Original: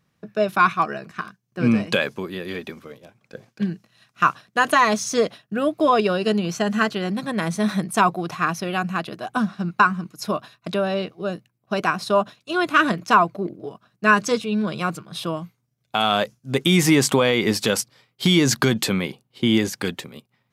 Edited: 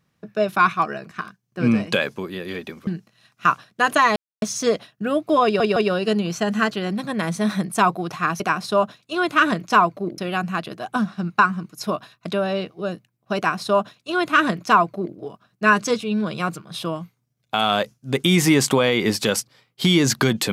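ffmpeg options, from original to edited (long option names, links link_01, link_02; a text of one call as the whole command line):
ffmpeg -i in.wav -filter_complex "[0:a]asplit=7[link_01][link_02][link_03][link_04][link_05][link_06][link_07];[link_01]atrim=end=2.872[link_08];[link_02]atrim=start=3.638:end=4.93,asetpts=PTS-STARTPTS,afade=type=out:start_time=1.288:duration=0.004:curve=hsin,apad=pad_dur=0.26[link_09];[link_03]atrim=start=4.93:end=6.112,asetpts=PTS-STARTPTS,afade=type=in:duration=0.004:curve=hsin[link_10];[link_04]atrim=start=5.948:end=6.112[link_11];[link_05]atrim=start=5.948:end=8.592[link_12];[link_06]atrim=start=11.778:end=13.562[link_13];[link_07]atrim=start=8.588[link_14];[link_09][link_10]concat=n=2:v=0:a=1[link_15];[link_08][link_15]acrossfade=duration=0.004:curve1=hsin:curve2=hsin[link_16];[link_16][link_11]acrossfade=duration=0.004:curve1=hsin:curve2=hsin[link_17];[link_17][link_12]acrossfade=duration=0.004:curve1=hsin:curve2=hsin[link_18];[link_18][link_13]acrossfade=duration=0.004:curve1=hsin:curve2=hsin[link_19];[link_19][link_14]acrossfade=duration=0.004:curve1=hsin:curve2=hsin" out.wav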